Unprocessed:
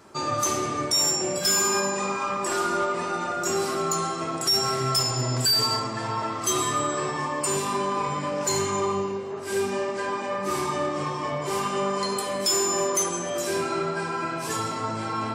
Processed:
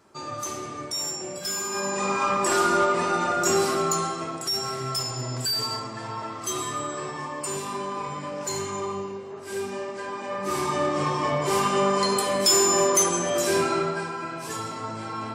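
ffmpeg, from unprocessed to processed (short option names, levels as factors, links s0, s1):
-af "volume=4.47,afade=t=in:st=1.7:d=0.54:silence=0.266073,afade=t=out:st=3.53:d=0.91:silence=0.354813,afade=t=in:st=10.13:d=1.01:silence=0.354813,afade=t=out:st=13.61:d=0.54:silence=0.398107"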